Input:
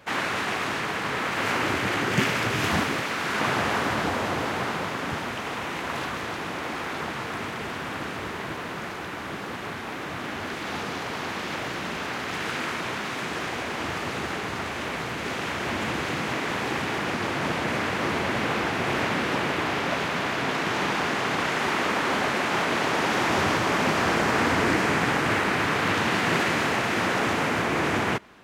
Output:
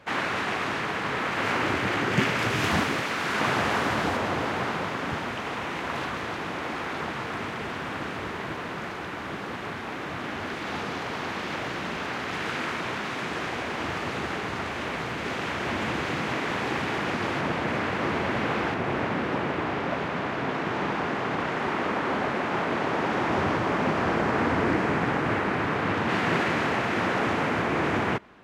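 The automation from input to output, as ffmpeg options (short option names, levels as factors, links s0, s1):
-af "asetnsamples=n=441:p=0,asendcmd='2.39 lowpass f 8300;4.17 lowpass f 4400;17.41 lowpass f 2500;18.74 lowpass f 1300;26.09 lowpass f 2300',lowpass=f=4000:p=1"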